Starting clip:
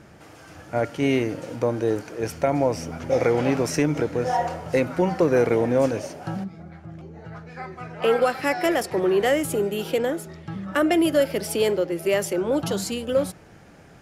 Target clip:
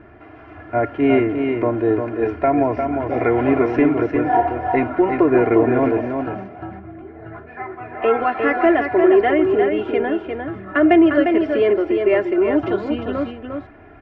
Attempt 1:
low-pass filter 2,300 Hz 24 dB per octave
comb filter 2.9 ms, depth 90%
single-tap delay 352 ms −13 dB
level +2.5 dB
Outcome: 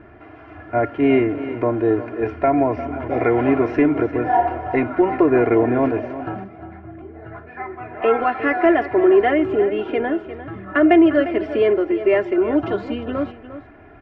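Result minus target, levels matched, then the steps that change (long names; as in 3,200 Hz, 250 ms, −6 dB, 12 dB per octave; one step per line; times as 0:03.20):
echo-to-direct −7.5 dB
change: single-tap delay 352 ms −5.5 dB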